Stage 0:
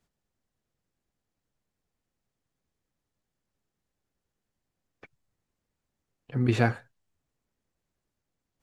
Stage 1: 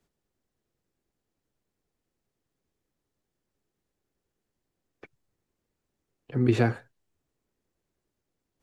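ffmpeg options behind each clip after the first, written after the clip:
-filter_complex "[0:a]equalizer=f=370:t=o:w=0.86:g=6.5,acrossover=split=240[s0][s1];[s1]acompressor=threshold=0.0891:ratio=6[s2];[s0][s2]amix=inputs=2:normalize=0"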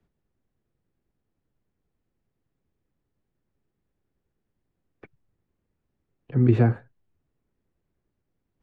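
-filter_complex "[0:a]bass=f=250:g=7,treble=f=4000:g=-15,acrossover=split=370|1400[s0][s1][s2];[s2]alimiter=level_in=2.37:limit=0.0631:level=0:latency=1:release=453,volume=0.422[s3];[s0][s1][s3]amix=inputs=3:normalize=0"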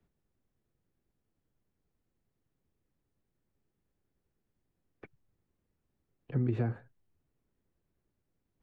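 -af "acompressor=threshold=0.0631:ratio=6,volume=0.708"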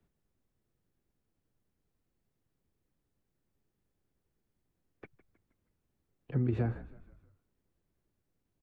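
-filter_complex "[0:a]asplit=5[s0][s1][s2][s3][s4];[s1]adelay=158,afreqshift=-53,volume=0.141[s5];[s2]adelay=316,afreqshift=-106,volume=0.0724[s6];[s3]adelay=474,afreqshift=-159,volume=0.0367[s7];[s4]adelay=632,afreqshift=-212,volume=0.0188[s8];[s0][s5][s6][s7][s8]amix=inputs=5:normalize=0"

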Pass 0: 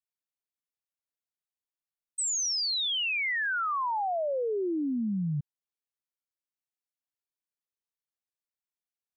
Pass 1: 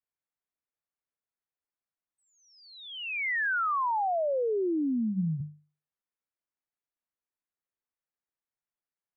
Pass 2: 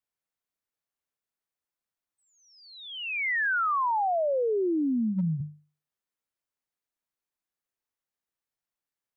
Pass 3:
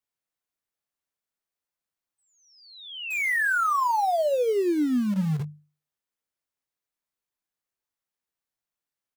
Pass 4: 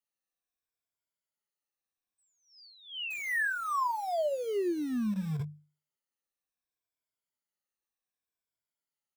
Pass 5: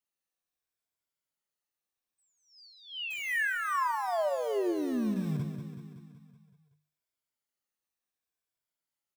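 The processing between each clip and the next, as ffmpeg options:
-af "lowpass=f=2200:w=0.5412,lowpass=f=2200:w=1.3066,bandreject=f=50:t=h:w=6,bandreject=f=100:t=h:w=6,bandreject=f=150:t=h:w=6,bandreject=f=200:t=h:w=6,volume=1.19"
-af "asoftclip=type=hard:threshold=0.0631,volume=1.26"
-filter_complex "[0:a]asplit=2[s0][s1];[s1]acrusher=bits=4:mix=0:aa=0.000001,volume=0.299[s2];[s0][s2]amix=inputs=2:normalize=0,asplit=2[s3][s4];[s4]adelay=20,volume=0.251[s5];[s3][s5]amix=inputs=2:normalize=0"
-af "afftfilt=real='re*pow(10,12/40*sin(2*PI*(1.7*log(max(b,1)*sr/1024/100)/log(2)-(-0.66)*(pts-256)/sr)))':imag='im*pow(10,12/40*sin(2*PI*(1.7*log(max(b,1)*sr/1024/100)/log(2)-(-0.66)*(pts-256)/sr)))':win_size=1024:overlap=0.75,acompressor=threshold=0.0631:ratio=2,volume=0.473"
-af "aecho=1:1:188|376|564|752|940|1128|1316:0.398|0.235|0.139|0.0818|0.0482|0.0285|0.0168"

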